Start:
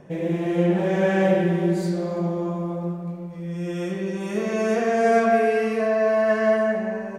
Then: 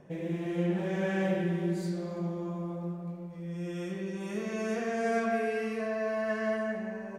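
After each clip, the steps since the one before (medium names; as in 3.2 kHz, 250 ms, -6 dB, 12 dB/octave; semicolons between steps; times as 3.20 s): dynamic bell 640 Hz, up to -5 dB, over -32 dBFS, Q 0.84; trim -7.5 dB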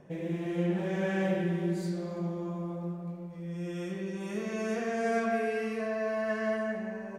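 no audible change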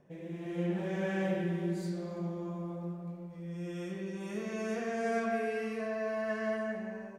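level rider gain up to 6 dB; trim -9 dB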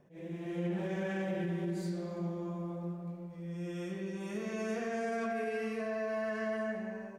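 peak limiter -27.5 dBFS, peak gain reduction 6 dB; attacks held to a fixed rise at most 190 dB/s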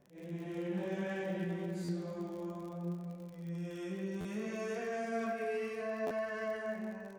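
chorus 0.62 Hz, delay 15.5 ms, depth 5.5 ms; crackle 52 per s -47 dBFS; buffer glitch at 1.84/4.20/6.06 s, samples 512, times 3; trim +1 dB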